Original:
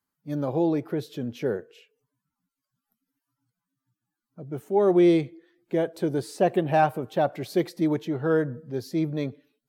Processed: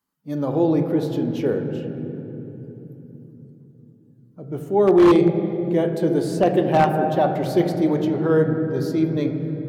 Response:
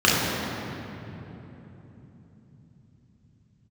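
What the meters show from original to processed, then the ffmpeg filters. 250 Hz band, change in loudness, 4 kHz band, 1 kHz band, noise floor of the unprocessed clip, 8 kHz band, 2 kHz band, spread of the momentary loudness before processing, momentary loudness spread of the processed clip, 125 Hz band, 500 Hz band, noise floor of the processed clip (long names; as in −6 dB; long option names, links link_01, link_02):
+6.5 dB, +5.5 dB, +4.5 dB, +5.0 dB, below −85 dBFS, can't be measured, +3.0 dB, 14 LU, 16 LU, +7.5 dB, +5.5 dB, −52 dBFS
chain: -filter_complex "[0:a]asplit=2[link_01][link_02];[1:a]atrim=start_sample=2205,highshelf=frequency=5100:gain=-9[link_03];[link_02][link_03]afir=irnorm=-1:irlink=0,volume=-25.5dB[link_04];[link_01][link_04]amix=inputs=2:normalize=0,aeval=exprs='0.316*(abs(mod(val(0)/0.316+3,4)-2)-1)':channel_layout=same,volume=2.5dB"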